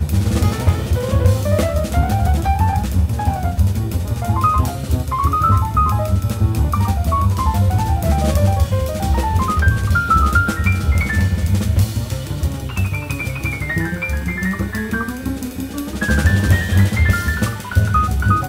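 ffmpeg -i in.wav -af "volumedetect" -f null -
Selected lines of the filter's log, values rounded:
mean_volume: -16.5 dB
max_volume: -1.8 dB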